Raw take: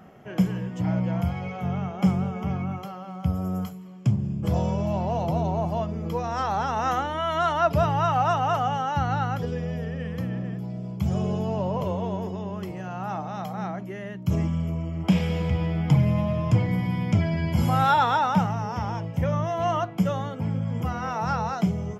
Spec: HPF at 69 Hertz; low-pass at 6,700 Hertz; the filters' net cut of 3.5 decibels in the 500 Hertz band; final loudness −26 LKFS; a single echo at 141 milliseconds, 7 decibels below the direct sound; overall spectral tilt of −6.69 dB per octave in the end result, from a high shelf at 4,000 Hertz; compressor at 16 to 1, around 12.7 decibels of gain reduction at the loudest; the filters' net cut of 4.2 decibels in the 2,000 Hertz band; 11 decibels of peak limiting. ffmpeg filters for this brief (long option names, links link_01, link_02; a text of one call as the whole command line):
ffmpeg -i in.wav -af "highpass=69,lowpass=6700,equalizer=frequency=500:width_type=o:gain=-4.5,equalizer=frequency=2000:width_type=o:gain=-7,highshelf=frequency=4000:gain=4.5,acompressor=threshold=-28dB:ratio=16,alimiter=level_in=6dB:limit=-24dB:level=0:latency=1,volume=-6dB,aecho=1:1:141:0.447,volume=11dB" out.wav